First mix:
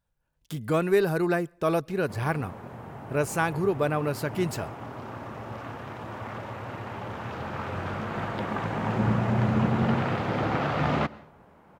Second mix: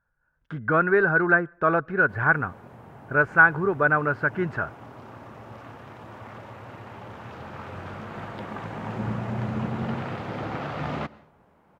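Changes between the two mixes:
speech: add low-pass with resonance 1,500 Hz, resonance Q 6.8
background −5.0 dB

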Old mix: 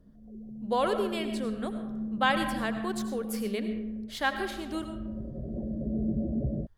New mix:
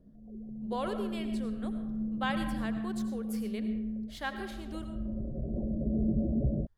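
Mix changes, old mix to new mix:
speech −8.0 dB
background: remove high-pass filter 62 Hz 6 dB per octave

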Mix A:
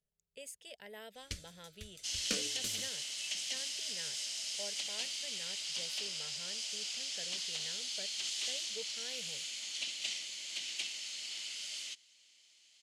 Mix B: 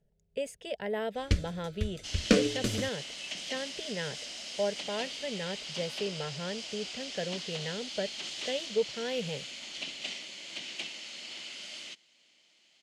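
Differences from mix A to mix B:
second sound −6.5 dB
master: remove first-order pre-emphasis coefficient 0.9

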